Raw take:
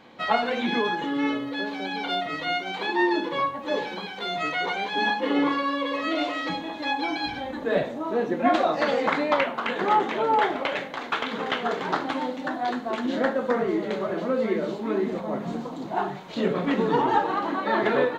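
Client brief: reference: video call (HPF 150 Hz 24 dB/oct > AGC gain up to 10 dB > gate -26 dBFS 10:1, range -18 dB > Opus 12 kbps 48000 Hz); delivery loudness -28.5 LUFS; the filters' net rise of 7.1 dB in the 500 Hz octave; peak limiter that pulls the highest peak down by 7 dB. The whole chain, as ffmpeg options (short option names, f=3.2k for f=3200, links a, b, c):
-af "equalizer=f=500:t=o:g=8.5,alimiter=limit=-11dB:level=0:latency=1,highpass=f=150:w=0.5412,highpass=f=150:w=1.3066,dynaudnorm=m=10dB,agate=range=-18dB:threshold=-26dB:ratio=10,volume=-7dB" -ar 48000 -c:a libopus -b:a 12k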